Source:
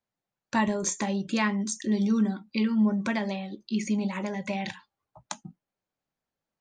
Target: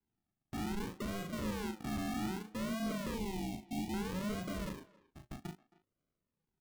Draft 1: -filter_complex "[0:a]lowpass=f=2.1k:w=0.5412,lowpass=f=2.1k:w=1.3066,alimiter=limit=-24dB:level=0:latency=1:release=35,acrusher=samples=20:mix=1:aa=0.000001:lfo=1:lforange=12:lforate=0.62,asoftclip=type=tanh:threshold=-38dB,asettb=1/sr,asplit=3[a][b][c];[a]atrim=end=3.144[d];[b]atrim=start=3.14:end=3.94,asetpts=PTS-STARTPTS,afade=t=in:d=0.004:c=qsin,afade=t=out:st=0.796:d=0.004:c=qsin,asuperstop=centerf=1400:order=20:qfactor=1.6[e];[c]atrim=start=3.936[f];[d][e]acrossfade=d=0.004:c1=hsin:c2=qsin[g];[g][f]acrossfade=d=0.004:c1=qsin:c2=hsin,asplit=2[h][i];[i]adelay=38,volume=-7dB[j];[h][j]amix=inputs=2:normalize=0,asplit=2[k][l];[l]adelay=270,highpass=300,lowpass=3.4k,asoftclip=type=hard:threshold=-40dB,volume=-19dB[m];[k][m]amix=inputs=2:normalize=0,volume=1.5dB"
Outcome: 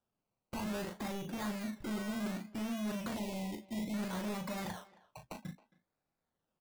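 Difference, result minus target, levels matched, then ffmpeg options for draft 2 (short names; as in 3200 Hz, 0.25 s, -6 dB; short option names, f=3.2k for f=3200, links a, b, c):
decimation with a swept rate: distortion -13 dB
-filter_complex "[0:a]lowpass=f=2.1k:w=0.5412,lowpass=f=2.1k:w=1.3066,alimiter=limit=-24dB:level=0:latency=1:release=35,acrusher=samples=70:mix=1:aa=0.000001:lfo=1:lforange=42:lforate=0.62,asoftclip=type=tanh:threshold=-38dB,asettb=1/sr,asplit=3[a][b][c];[a]atrim=end=3.144[d];[b]atrim=start=3.14:end=3.94,asetpts=PTS-STARTPTS,afade=t=in:d=0.004:c=qsin,afade=t=out:st=0.796:d=0.004:c=qsin,asuperstop=centerf=1400:order=20:qfactor=1.6[e];[c]atrim=start=3.936[f];[d][e]acrossfade=d=0.004:c1=hsin:c2=qsin[g];[g][f]acrossfade=d=0.004:c1=qsin:c2=hsin,asplit=2[h][i];[i]adelay=38,volume=-7dB[j];[h][j]amix=inputs=2:normalize=0,asplit=2[k][l];[l]adelay=270,highpass=300,lowpass=3.4k,asoftclip=type=hard:threshold=-40dB,volume=-19dB[m];[k][m]amix=inputs=2:normalize=0,volume=1.5dB"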